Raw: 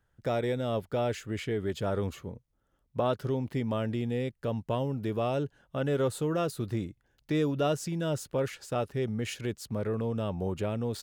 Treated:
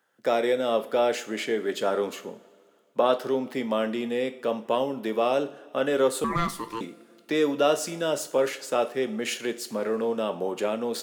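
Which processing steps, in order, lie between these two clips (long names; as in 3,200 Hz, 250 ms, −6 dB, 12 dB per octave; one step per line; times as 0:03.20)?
Bessel high-pass filter 350 Hz, order 6
coupled-rooms reverb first 0.38 s, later 2.3 s, from −19 dB, DRR 8 dB
0:06.24–0:06.81: ring modulation 680 Hz
level +7.5 dB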